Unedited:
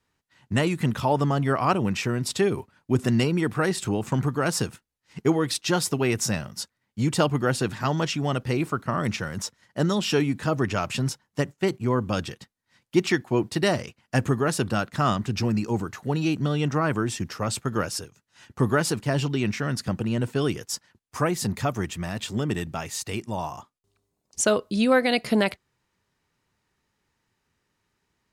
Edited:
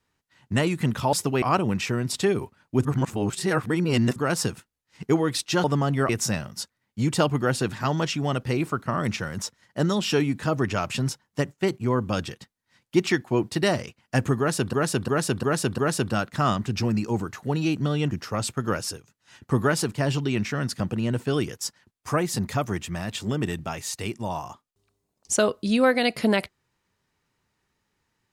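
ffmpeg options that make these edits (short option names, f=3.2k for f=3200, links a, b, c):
-filter_complex "[0:a]asplit=12[a][b][c][d][e][f][g][h][i][j][k][l];[a]atrim=end=1.132[m];[b]atrim=start=5.798:end=6.092[n];[c]atrim=start=1.578:end=3.012[o];[d]atrim=start=3.008:end=4.322,asetpts=PTS-STARTPTS,areverse[p];[e]atrim=start=4.318:end=5.802[q];[f]atrim=start=1.128:end=1.582[r];[g]atrim=start=6.088:end=14.732[s];[h]atrim=start=14.378:end=14.732[t];[i]atrim=start=14.378:end=14.732[u];[j]atrim=start=14.378:end=14.732[v];[k]atrim=start=14.378:end=16.712[w];[l]atrim=start=17.188[x];[m][n]acrossfade=d=0.004:c1=hsin:c2=hsin[y];[y][o]acrossfade=d=0.004:c1=hsin:c2=hsin[z];[z][p]acrossfade=d=0.004:c1=hsin:c2=hsin[aa];[aa][q]acrossfade=d=0.004:c1=hsin:c2=hsin[ab];[ab][r]acrossfade=d=0.004:c1=hsin:c2=hsin[ac];[ac][s]acrossfade=d=0.004:c1=hsin:c2=hsin[ad];[ad][t]acrossfade=d=0.004:c1=hsin:c2=hsin[ae];[ae][u]acrossfade=d=0.004:c1=hsin:c2=hsin[af];[af][v]acrossfade=d=0.004:c1=hsin:c2=hsin[ag];[ag][w]acrossfade=d=0.004:c1=hsin:c2=hsin[ah];[ah][x]acrossfade=d=0.004:c1=hsin:c2=hsin"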